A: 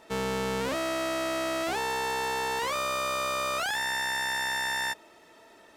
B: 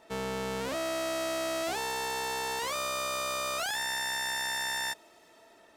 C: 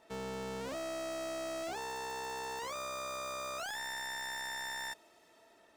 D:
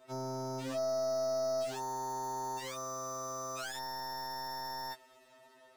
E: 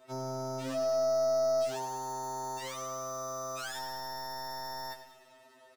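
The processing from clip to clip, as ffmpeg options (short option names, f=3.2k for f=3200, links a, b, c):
-filter_complex "[0:a]equalizer=f=680:t=o:w=0.21:g=4.5,acrossover=split=3700[a][b];[b]dynaudnorm=f=310:g=5:m=6dB[c];[a][c]amix=inputs=2:normalize=0,volume=-4.5dB"
-af "asoftclip=type=hard:threshold=-30.5dB,volume=-5.5dB"
-af "afftfilt=real='re*2.45*eq(mod(b,6),0)':imag='im*2.45*eq(mod(b,6),0)':win_size=2048:overlap=0.75,volume=4dB"
-af "aecho=1:1:98|196|294|392|490|588:0.282|0.147|0.0762|0.0396|0.0206|0.0107,volume=1.5dB"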